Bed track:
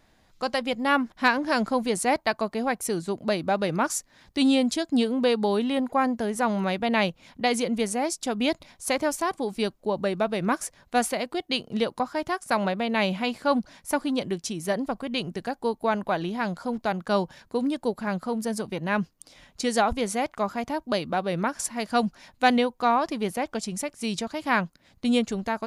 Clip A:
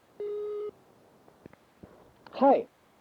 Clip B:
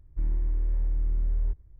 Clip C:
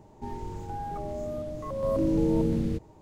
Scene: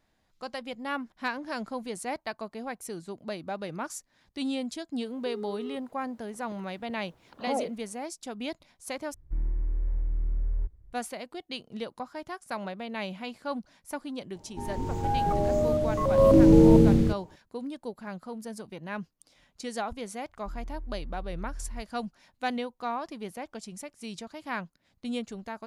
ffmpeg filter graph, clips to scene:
-filter_complex "[2:a]asplit=2[a][b];[0:a]volume=-10.5dB[c];[1:a]alimiter=limit=-18.5dB:level=0:latency=1:release=71[d];[3:a]dynaudnorm=f=120:g=9:m=10dB[e];[c]asplit=2[f][g];[f]atrim=end=9.144[h];[a]atrim=end=1.79,asetpts=PTS-STARTPTS,volume=-2.5dB[i];[g]atrim=start=10.926[j];[d]atrim=end=3,asetpts=PTS-STARTPTS,volume=-4.5dB,afade=t=in:d=0.004:c=hsin,afade=t=out:st=2.996:d=0.004:c=hsin,adelay=5060[k];[e]atrim=end=3.01,asetpts=PTS-STARTPTS,volume=-1dB,afade=t=in:d=0.004:c=hsin,afade=t=out:st=3.006:d=0.004:c=hsin,adelay=14350[l];[b]atrim=end=1.79,asetpts=PTS-STARTPTS,volume=-12.5dB,afade=t=in:d=0.004:c=hsin,afade=t=out:st=1.786:d=0.004:c=hsin,adelay=20290[m];[h][i]acrossfade=d=0.004:c1=hsin:c2=hsin[n];[n][j]acrossfade=d=0.004:c1=hsin:c2=hsin[o];[o][k][l][m]amix=inputs=4:normalize=0"

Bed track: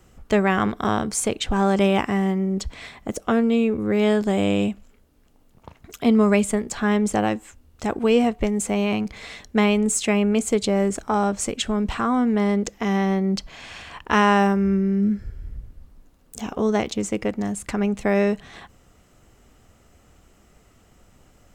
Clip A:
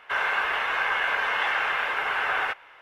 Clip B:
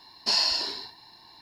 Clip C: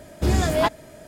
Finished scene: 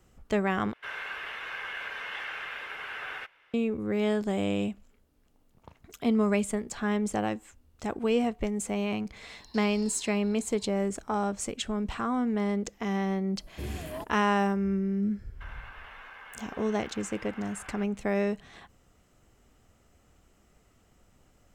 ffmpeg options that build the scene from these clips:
-filter_complex "[1:a]asplit=2[a][b];[0:a]volume=-8dB[c];[a]equalizer=f=860:t=o:w=1.6:g=-9[d];[2:a]acompressor=threshold=-40dB:ratio=6:attack=3.2:release=140:knee=1:detection=peak[e];[3:a]firequalizer=gain_entry='entry(490,0);entry(1700,-16);entry(11000,6)':delay=0.05:min_phase=1[f];[b]acompressor=threshold=-27dB:ratio=6:attack=3.2:release=140:knee=1:detection=peak[g];[c]asplit=2[h][i];[h]atrim=end=0.734[j];[d]atrim=end=2.81,asetpts=PTS-STARTPTS,volume=-8dB[k];[i]atrim=start=3.536[l];[e]atrim=end=1.41,asetpts=PTS-STARTPTS,volume=-6dB,afade=t=in:d=0.004:c=hsin,afade=t=out:st=1.406:d=0.004:c=hsin,adelay=9280[m];[f]atrim=end=1.07,asetpts=PTS-STARTPTS,volume=-16dB,afade=t=in:d=0.004:c=hsin,afade=t=out:st=1.066:d=0.004:c=hsin,adelay=13360[n];[g]atrim=end=2.81,asetpts=PTS-STARTPTS,volume=-16.5dB,afade=t=in:d=0.1,afade=t=out:st=2.71:d=0.1,adelay=15310[o];[j][k]acrossfade=d=0.004:c1=hsin:c2=hsin[p];[p][l]acrossfade=d=0.004:c1=hsin:c2=hsin[q];[q][m][n][o]amix=inputs=4:normalize=0"

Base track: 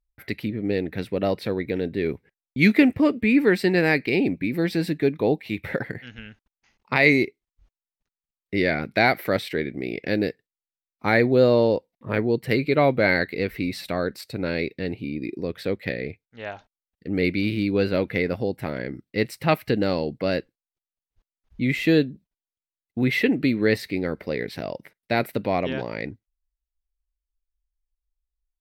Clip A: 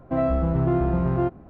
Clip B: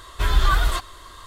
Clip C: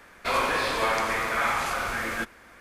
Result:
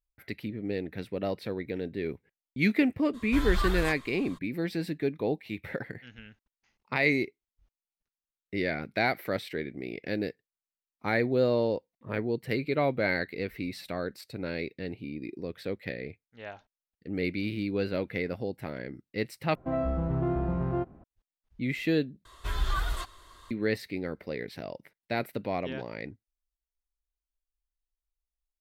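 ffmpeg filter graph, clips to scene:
-filter_complex "[2:a]asplit=2[a][b];[0:a]volume=-8dB,asplit=3[c][d][e];[c]atrim=end=19.554[f];[1:a]atrim=end=1.49,asetpts=PTS-STARTPTS,volume=-7dB[g];[d]atrim=start=21.036:end=22.254[h];[b]atrim=end=1.26,asetpts=PTS-STARTPTS,volume=-11dB[i];[e]atrim=start=23.506[j];[a]atrim=end=1.26,asetpts=PTS-STARTPTS,volume=-10dB,afade=t=in:d=0.02,afade=t=out:st=1.24:d=0.02,adelay=138033S[k];[f][g]acrossfade=d=0.004:c1=hsin:c2=hsin[l];[l][h]acrossfade=d=0.004:c1=hsin:c2=hsin[m];[m][i]acrossfade=d=0.004:c1=hsin:c2=hsin[n];[n][j]acrossfade=d=0.004:c1=hsin:c2=hsin[o];[o][k]amix=inputs=2:normalize=0"

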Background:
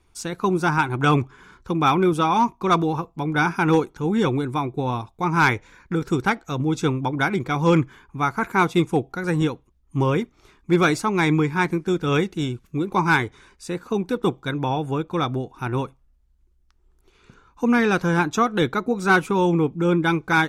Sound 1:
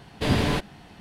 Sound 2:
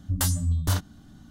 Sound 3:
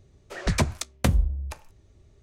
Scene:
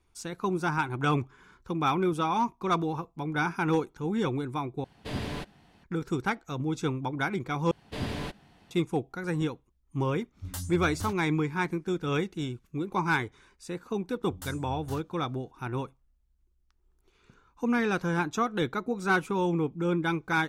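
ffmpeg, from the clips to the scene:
-filter_complex "[1:a]asplit=2[a][b];[2:a]asplit=2[c][d];[0:a]volume=-8dB,asplit=3[e][f][g];[e]atrim=end=4.844[h];[a]atrim=end=1,asetpts=PTS-STARTPTS,volume=-11.5dB[i];[f]atrim=start=5.836:end=7.714[j];[b]atrim=end=1,asetpts=PTS-STARTPTS,volume=-11dB[k];[g]atrim=start=8.706[l];[c]atrim=end=1.3,asetpts=PTS-STARTPTS,volume=-12.5dB,afade=t=in:d=0.05,afade=t=out:st=1.25:d=0.05,adelay=10330[m];[d]atrim=end=1.3,asetpts=PTS-STARTPTS,volume=-17dB,afade=t=in:d=0.004:c=hsin,afade=t=out:st=1.296:d=0.004:c=hsin,adelay=14210[n];[h][i]acrossfade=d=0.004:c1=hsin:c2=hsin[o];[o][j]acrossfade=d=0.004:c1=hsin:c2=hsin[p];[p][k]acrossfade=d=0.004:c1=hsin:c2=hsin[q];[q][l]acrossfade=d=0.004:c1=hsin:c2=hsin[r];[r][m][n]amix=inputs=3:normalize=0"

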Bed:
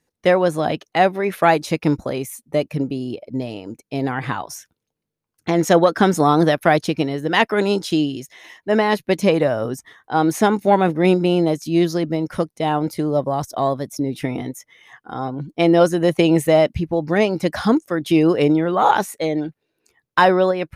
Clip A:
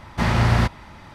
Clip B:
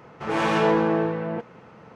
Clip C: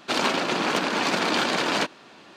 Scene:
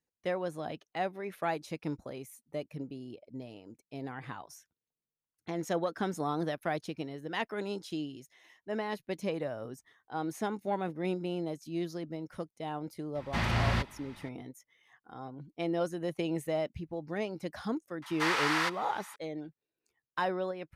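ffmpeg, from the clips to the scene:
-filter_complex "[1:a]asplit=2[a][b];[0:a]volume=-18dB[c];[a]equalizer=f=2.9k:w=0.8:g=6[d];[b]highpass=f=980:w=0.5412,highpass=f=980:w=1.3066[e];[d]atrim=end=1.14,asetpts=PTS-STARTPTS,volume=-11.5dB,afade=t=in:d=0.004:c=hsin,afade=t=out:st=1.136:d=0.004:c=hsin,adelay=13150[f];[e]atrim=end=1.14,asetpts=PTS-STARTPTS,volume=-2.5dB,afade=t=in:d=0.004:c=hsin,afade=t=out:st=1.136:d=0.004:c=hsin,adelay=18020[g];[c][f][g]amix=inputs=3:normalize=0"

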